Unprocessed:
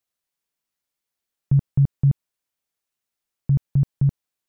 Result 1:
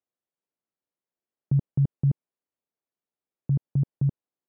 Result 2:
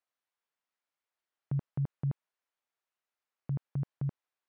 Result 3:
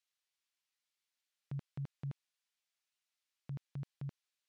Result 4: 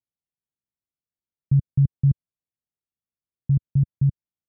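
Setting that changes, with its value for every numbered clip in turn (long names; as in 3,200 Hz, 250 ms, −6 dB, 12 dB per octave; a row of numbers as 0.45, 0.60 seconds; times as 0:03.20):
resonant band-pass, frequency: 350, 1,100, 3,300, 100 Hertz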